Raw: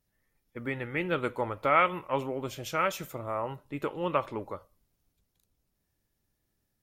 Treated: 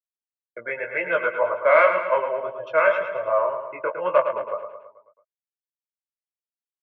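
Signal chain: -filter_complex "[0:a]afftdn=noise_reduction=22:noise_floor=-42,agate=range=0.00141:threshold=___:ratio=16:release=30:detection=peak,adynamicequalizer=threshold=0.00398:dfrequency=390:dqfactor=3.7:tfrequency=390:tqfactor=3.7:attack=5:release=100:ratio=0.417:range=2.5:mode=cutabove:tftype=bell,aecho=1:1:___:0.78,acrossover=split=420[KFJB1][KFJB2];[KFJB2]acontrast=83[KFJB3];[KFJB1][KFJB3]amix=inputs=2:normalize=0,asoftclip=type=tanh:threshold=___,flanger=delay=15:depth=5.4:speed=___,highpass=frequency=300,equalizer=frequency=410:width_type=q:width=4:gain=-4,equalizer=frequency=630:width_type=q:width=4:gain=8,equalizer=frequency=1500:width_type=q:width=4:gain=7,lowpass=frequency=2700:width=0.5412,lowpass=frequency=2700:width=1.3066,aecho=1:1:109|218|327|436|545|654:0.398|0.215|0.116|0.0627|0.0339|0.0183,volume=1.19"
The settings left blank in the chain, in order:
0.00562, 1.9, 0.355, 1.9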